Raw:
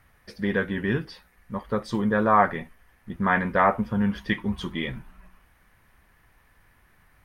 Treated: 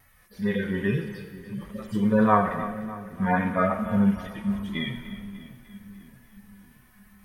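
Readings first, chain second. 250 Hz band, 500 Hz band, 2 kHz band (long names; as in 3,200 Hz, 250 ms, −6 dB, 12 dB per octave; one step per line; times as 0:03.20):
+2.0 dB, −1.0 dB, −4.5 dB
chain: harmonic-percussive split with one part muted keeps harmonic
high-shelf EQ 4,800 Hz +11 dB
pitch vibrato 2.4 Hz 39 cents
on a send: echo with a time of its own for lows and highs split 350 Hz, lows 628 ms, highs 298 ms, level −14 dB
on the sum: four-comb reverb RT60 1.2 s, combs from 29 ms, DRR 8.5 dB
level +2 dB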